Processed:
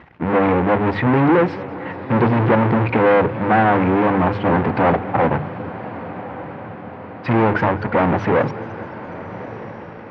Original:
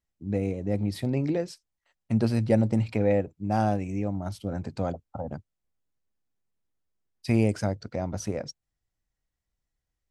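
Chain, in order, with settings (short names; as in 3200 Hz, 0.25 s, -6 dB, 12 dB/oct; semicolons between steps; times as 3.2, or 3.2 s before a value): in parallel at -7 dB: fuzz box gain 46 dB, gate -43 dBFS; on the sum: power-law curve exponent 0.35; speaker cabinet 140–2200 Hz, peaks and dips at 210 Hz -4 dB, 620 Hz -4 dB, 900 Hz +5 dB; notches 50/100/150/200 Hz; on a send: diffused feedback echo 1.245 s, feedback 58%, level -15 dB; on the sum: warbling echo 0.211 s, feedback 74%, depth 165 cents, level -19.5 dB; gain -1 dB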